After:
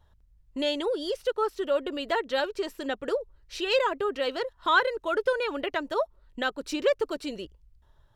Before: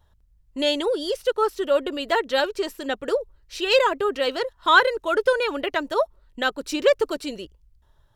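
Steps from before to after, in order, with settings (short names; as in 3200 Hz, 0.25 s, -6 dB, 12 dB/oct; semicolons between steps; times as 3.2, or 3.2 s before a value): in parallel at +1.5 dB: compressor, threshold -31 dBFS, peak gain reduction 19.5 dB; on the sum: high shelf 6300 Hz -6.5 dB; gain -7.5 dB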